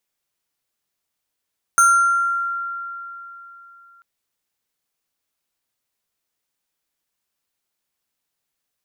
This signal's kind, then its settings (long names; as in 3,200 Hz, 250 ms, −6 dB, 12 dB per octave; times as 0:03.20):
two-operator FM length 2.24 s, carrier 1,380 Hz, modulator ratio 5.58, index 0.78, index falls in 1.06 s exponential, decay 3.41 s, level −9 dB